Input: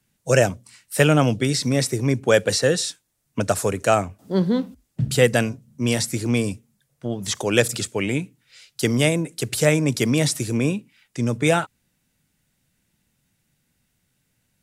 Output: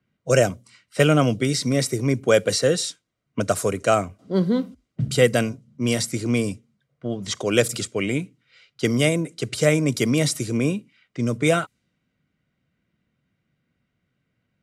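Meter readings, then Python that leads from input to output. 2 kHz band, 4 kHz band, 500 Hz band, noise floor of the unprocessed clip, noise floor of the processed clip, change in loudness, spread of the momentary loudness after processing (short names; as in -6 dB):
-2.0 dB, -1.0 dB, 0.0 dB, -72 dBFS, -76 dBFS, -1.0 dB, 11 LU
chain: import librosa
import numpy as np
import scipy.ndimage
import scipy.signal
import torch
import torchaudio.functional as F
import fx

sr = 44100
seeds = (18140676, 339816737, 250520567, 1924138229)

y = fx.notch_comb(x, sr, f0_hz=860.0)
y = fx.env_lowpass(y, sr, base_hz=2400.0, full_db=-19.0)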